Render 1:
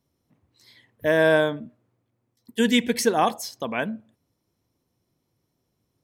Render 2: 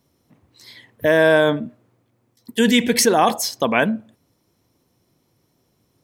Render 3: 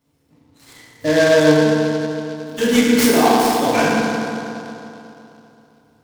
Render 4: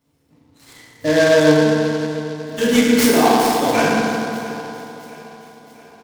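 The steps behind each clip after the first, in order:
low shelf 110 Hz -5 dB; in parallel at -1 dB: negative-ratio compressor -26 dBFS, ratio -1; on the sum: gain +2.5 dB
FDN reverb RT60 3 s, high-frequency decay 0.45×, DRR -9 dB; noise-modulated delay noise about 3400 Hz, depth 0.037 ms; gain -7.5 dB
feedback echo 0.67 s, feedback 52%, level -18.5 dB

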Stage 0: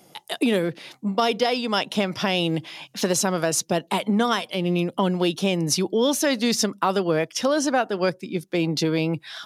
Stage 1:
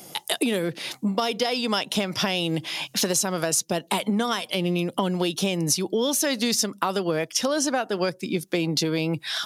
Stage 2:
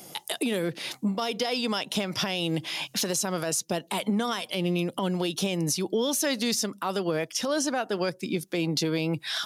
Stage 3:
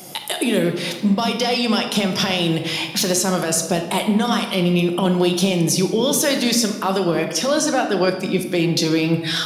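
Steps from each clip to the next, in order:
high shelf 4500 Hz +8.5 dB; compressor 4:1, threshold -29 dBFS, peak gain reduction 13.5 dB; gain +6.5 dB
limiter -15 dBFS, peak gain reduction 8 dB; gain -2 dB
shoebox room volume 860 m³, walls mixed, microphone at 1 m; gain +7 dB

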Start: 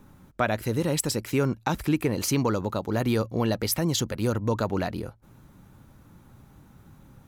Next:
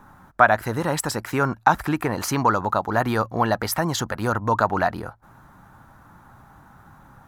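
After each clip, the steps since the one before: band shelf 1100 Hz +12.5 dB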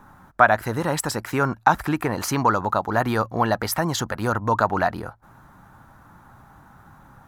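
nothing audible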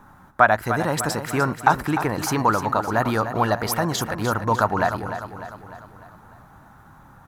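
feedback echo 0.3 s, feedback 52%, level -10 dB

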